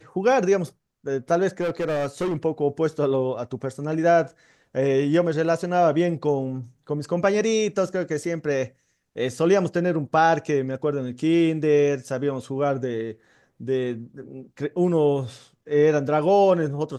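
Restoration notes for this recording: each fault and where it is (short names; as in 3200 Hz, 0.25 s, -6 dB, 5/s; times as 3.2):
1.6–2.37 clipped -21.5 dBFS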